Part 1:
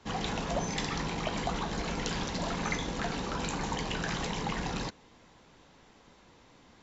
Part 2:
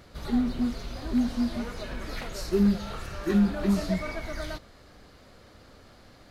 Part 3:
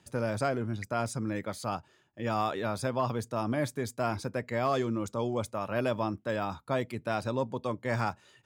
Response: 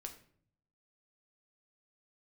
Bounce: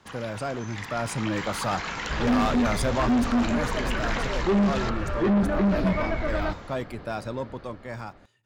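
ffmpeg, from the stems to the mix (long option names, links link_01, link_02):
-filter_complex "[0:a]equalizer=frequency=1300:width_type=o:width=1.6:gain=6.5,acrossover=split=1200|2700[link_01][link_02][link_03];[link_01]acompressor=threshold=-46dB:ratio=4[link_04];[link_02]acompressor=threshold=-38dB:ratio=4[link_05];[link_03]acompressor=threshold=-48dB:ratio=4[link_06];[link_04][link_05][link_06]amix=inputs=3:normalize=0,volume=-3.5dB[link_07];[1:a]lowpass=2200,adelay=1950,volume=-1.5dB[link_08];[2:a]volume=-2.5dB,afade=type=out:start_time=2.86:duration=0.66:silence=0.354813,asplit=2[link_09][link_10];[link_10]volume=-11.5dB[link_11];[3:a]atrim=start_sample=2205[link_12];[link_11][link_12]afir=irnorm=-1:irlink=0[link_13];[link_07][link_08][link_09][link_13]amix=inputs=4:normalize=0,dynaudnorm=framelen=340:gausssize=7:maxgain=12dB,asoftclip=type=tanh:threshold=-18.5dB"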